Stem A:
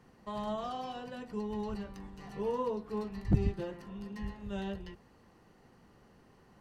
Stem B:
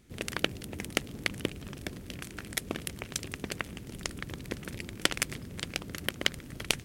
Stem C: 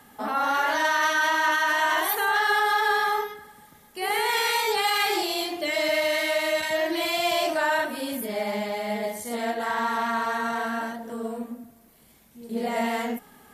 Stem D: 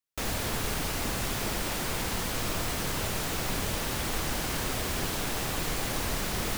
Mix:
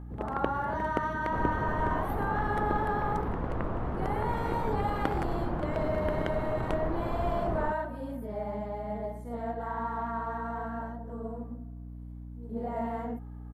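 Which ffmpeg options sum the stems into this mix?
ffmpeg -i stem1.wav -i stem2.wav -i stem3.wav -i stem4.wav -filter_complex "[1:a]volume=1.5dB[link_01];[2:a]highshelf=frequency=3700:gain=8.5,volume=-7dB[link_02];[3:a]lowpass=3000,adelay=1150,volume=0dB[link_03];[link_01][link_02][link_03]amix=inputs=3:normalize=0,firequalizer=gain_entry='entry(1000,0);entry(2400,-20);entry(5200,-29)':delay=0.05:min_phase=1,aeval=exprs='val(0)+0.00891*(sin(2*PI*60*n/s)+sin(2*PI*2*60*n/s)/2+sin(2*PI*3*60*n/s)/3+sin(2*PI*4*60*n/s)/4+sin(2*PI*5*60*n/s)/5)':channel_layout=same" out.wav

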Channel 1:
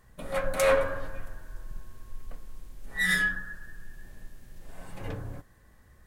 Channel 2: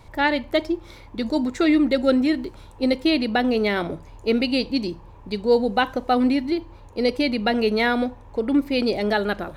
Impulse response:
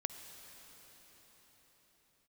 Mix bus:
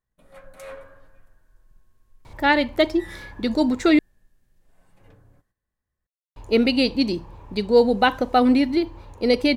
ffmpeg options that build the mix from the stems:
-filter_complex "[0:a]agate=range=-10dB:threshold=-51dB:ratio=16:detection=peak,volume=-16.5dB[link_01];[1:a]adelay=2250,volume=2.5dB,asplit=3[link_02][link_03][link_04];[link_02]atrim=end=3.99,asetpts=PTS-STARTPTS,afade=type=out:start_time=3.986:duration=0.004:curve=hsin[link_05];[link_03]atrim=start=3.99:end=6.36,asetpts=PTS-STARTPTS,volume=0[link_06];[link_04]atrim=start=6.36,asetpts=PTS-STARTPTS,afade=type=in:duration=0.004:curve=hsin[link_07];[link_05][link_06][link_07]concat=n=3:v=0:a=1[link_08];[link_01][link_08]amix=inputs=2:normalize=0"

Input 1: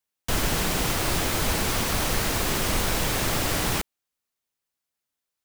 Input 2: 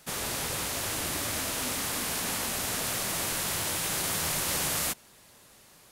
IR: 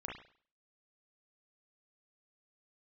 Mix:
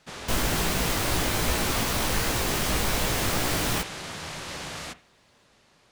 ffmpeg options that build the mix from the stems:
-filter_complex "[0:a]flanger=delay=16:depth=3.9:speed=2.6,volume=2dB[link_01];[1:a]lowpass=5100,asoftclip=type=tanh:threshold=-23dB,volume=-4dB,asplit=2[link_02][link_03];[link_03]volume=-11dB[link_04];[2:a]atrim=start_sample=2205[link_05];[link_04][link_05]afir=irnorm=-1:irlink=0[link_06];[link_01][link_02][link_06]amix=inputs=3:normalize=0"

